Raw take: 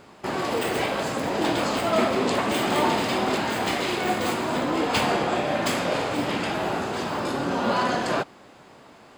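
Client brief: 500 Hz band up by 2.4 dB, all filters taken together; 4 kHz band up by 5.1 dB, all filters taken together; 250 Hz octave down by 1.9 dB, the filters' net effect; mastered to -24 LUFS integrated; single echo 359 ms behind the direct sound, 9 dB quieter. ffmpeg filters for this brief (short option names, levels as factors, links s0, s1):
-af "equalizer=f=250:t=o:g=-4,equalizer=f=500:t=o:g=4,equalizer=f=4000:t=o:g=6.5,aecho=1:1:359:0.355,volume=0.841"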